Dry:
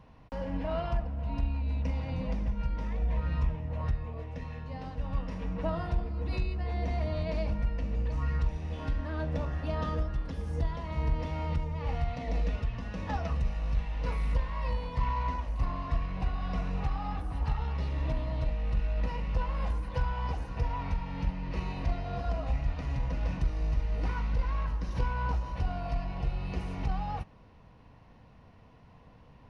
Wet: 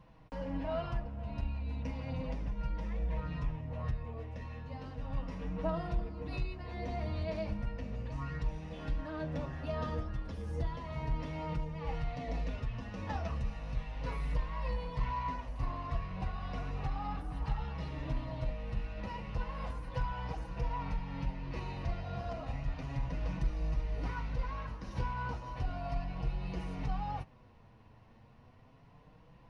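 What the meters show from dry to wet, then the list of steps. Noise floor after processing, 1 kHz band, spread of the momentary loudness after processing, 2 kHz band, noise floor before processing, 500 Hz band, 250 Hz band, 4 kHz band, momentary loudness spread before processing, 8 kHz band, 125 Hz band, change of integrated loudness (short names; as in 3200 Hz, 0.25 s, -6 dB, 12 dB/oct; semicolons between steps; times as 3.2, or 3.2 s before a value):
-59 dBFS, -3.5 dB, 4 LU, -3.5 dB, -55 dBFS, -3.0 dB, -3.5 dB, -3.5 dB, 4 LU, n/a, -5.5 dB, -5.5 dB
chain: flange 0.34 Hz, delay 5.8 ms, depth 3.6 ms, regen -20%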